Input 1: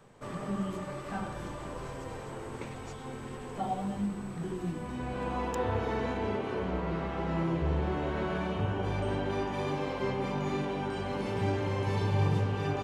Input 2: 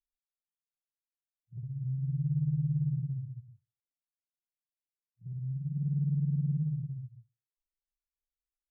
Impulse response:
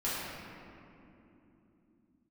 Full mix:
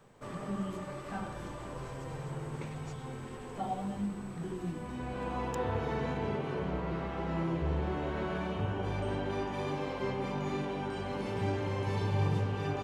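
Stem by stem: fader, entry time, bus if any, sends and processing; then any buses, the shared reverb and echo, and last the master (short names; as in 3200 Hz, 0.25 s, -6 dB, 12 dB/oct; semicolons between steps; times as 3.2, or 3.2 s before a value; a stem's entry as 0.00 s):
-2.5 dB, 0.00 s, no send, dry
-4.0 dB, 0.00 s, no send, tilt +3 dB/oct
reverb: off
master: dry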